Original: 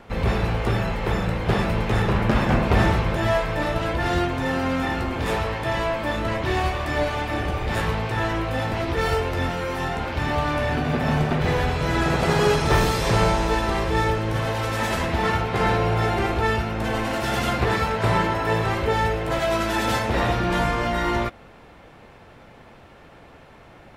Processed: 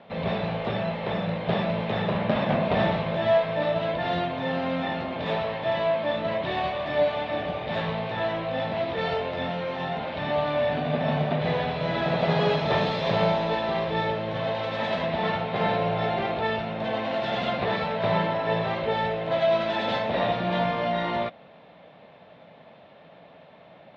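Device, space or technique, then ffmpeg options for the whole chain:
kitchen radio: -af "highpass=170,equalizer=f=170:t=q:w=4:g=8,equalizer=f=350:t=q:w=4:g=-6,equalizer=f=620:t=q:w=4:g=10,equalizer=f=1.4k:t=q:w=4:g=-5,equalizer=f=3.7k:t=q:w=4:g=7,lowpass=f=3.9k:w=0.5412,lowpass=f=3.9k:w=1.3066,volume=-4.5dB"

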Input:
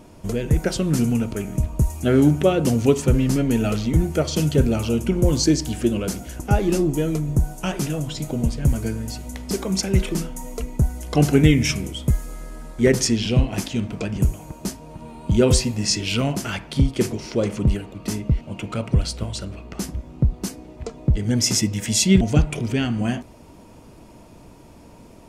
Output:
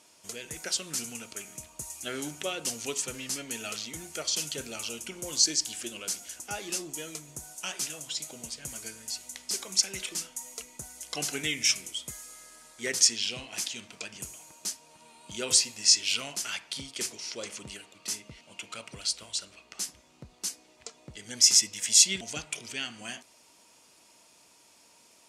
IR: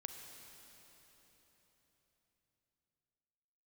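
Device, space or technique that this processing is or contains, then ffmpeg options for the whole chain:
piezo pickup straight into a mixer: -af "lowpass=7.6k,aderivative,volume=5dB"

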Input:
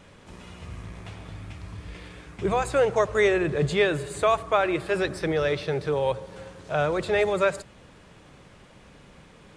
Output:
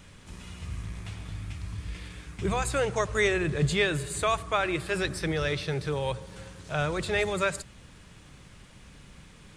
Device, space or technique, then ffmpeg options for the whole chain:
smiley-face EQ: -af "lowshelf=f=97:g=6,equalizer=f=570:t=o:w=1.9:g=-7.5,highshelf=f=6k:g=7.5"

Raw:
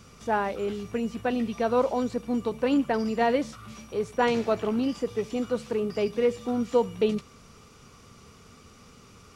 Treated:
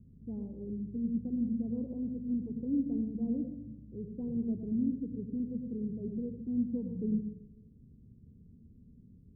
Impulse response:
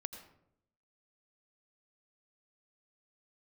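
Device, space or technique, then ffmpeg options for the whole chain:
next room: -filter_complex "[0:a]lowpass=f=270:w=0.5412,lowpass=f=270:w=1.3066[a];[1:a]atrim=start_sample=2205[b];[a][b]afir=irnorm=-1:irlink=0,asettb=1/sr,asplit=3[c][d][e];[c]atrim=end=4.664[f];[d]atrim=start=4.66:end=5.33,asetpts=PTS-STARTPTS,afade=t=in:d=0.004:c=qsin,afade=t=out:st=0.666:d=0.004:c=qsin,equalizer=f=1.2k:t=o:w=0.78:g=-8.5[g];[e]atrim=start=5.326[h];[f][g]acrossfade=d=0.004:c1=hsin:c2=qsin[i];[i][h]acrossfade=d=0.004:c1=qsin:c2=hsin"

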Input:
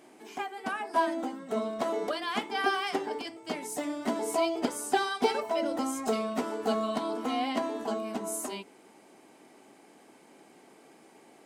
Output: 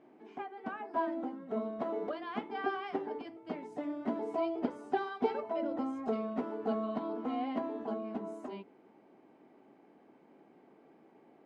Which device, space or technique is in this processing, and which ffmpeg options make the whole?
phone in a pocket: -af "lowpass=3.4k,equalizer=f=190:t=o:w=2.8:g=3,highshelf=f=2.1k:g=-12,volume=-5.5dB"

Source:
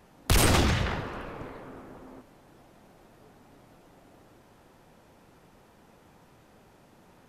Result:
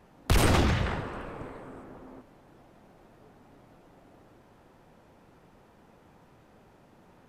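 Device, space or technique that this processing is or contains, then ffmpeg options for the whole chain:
behind a face mask: -filter_complex "[0:a]asettb=1/sr,asplit=3[a][b][c];[a]atrim=end=0.834[d];[b]atrim=start=0.83:end=1.84,asetpts=PTS-STARTPTS,afade=t=in:d=0.004:c=qsin,afade=t=out:st=1.006:d=0.004:c=qsin,equalizer=f=8.3k:t=o:w=0.28:g=11.5[e];[c]atrim=start=1.836[f];[d][e]acrossfade=d=0.004:c1=hsin:c2=qsin[g];[g][f]acrossfade=d=0.004:c1=qsin:c2=hsin,highshelf=f=3.4k:g=-7.5"

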